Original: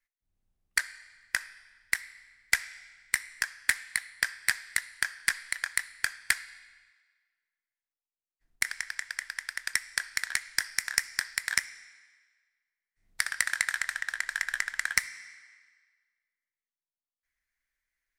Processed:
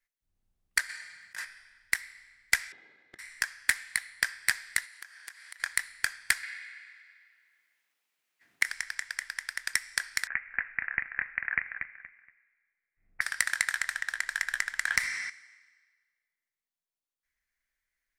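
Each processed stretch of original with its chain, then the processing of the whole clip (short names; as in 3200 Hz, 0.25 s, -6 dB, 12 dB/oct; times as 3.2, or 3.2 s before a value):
0.89–1.45 HPF 76 Hz 24 dB/oct + comb 5.6 ms, depth 40% + negative-ratio compressor -38 dBFS
2.72–3.19 minimum comb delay 2.4 ms + BPF 230–2000 Hz + compressor 8:1, threshold -50 dBFS
4.85–5.6 HPF 460 Hz + compressor 3:1, threshold -47 dBFS
6.43–8.65 HPF 160 Hz + bell 2100 Hz +10.5 dB 1.5 oct + three-band squash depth 40%
10.27–13.21 steep low-pass 2600 Hz 96 dB/oct + notch 950 Hz, Q 9.3 + feedback echo 0.236 s, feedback 25%, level -7.5 dB
14.87–15.3 high shelf 6300 Hz -8 dB + fast leveller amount 50%
whole clip: dry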